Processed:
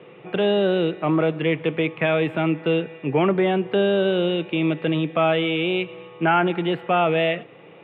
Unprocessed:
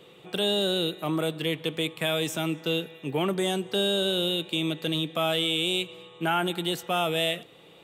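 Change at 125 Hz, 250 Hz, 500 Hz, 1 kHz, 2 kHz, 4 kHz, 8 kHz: +7.0 dB, +7.5 dB, +8.0 dB, +7.5 dB, +6.0 dB, -4.5 dB, under -30 dB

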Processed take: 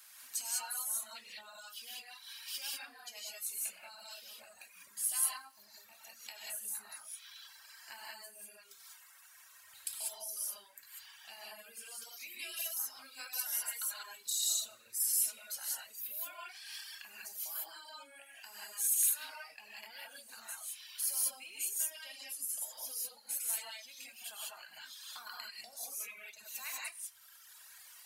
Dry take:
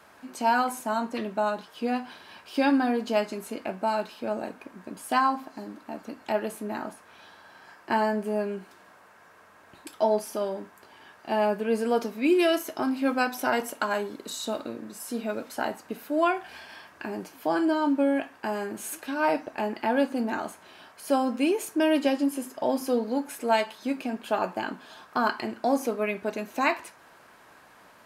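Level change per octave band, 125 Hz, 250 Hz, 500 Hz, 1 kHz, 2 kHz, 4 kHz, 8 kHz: no reading, under -40 dB, -32.5 dB, -25.0 dB, -15.0 dB, -4.0 dB, +8.0 dB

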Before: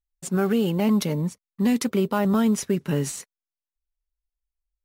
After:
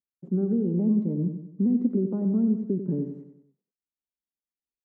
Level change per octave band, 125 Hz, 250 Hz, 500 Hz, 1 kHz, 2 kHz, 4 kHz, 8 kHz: -2.0 dB, -1.5 dB, -6.0 dB, under -20 dB, under -30 dB, under -40 dB, under -40 dB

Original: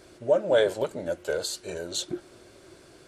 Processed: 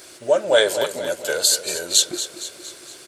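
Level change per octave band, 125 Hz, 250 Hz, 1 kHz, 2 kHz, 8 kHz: -2.5 dB, +1.5 dB, +7.0 dB, +10.0 dB, +17.5 dB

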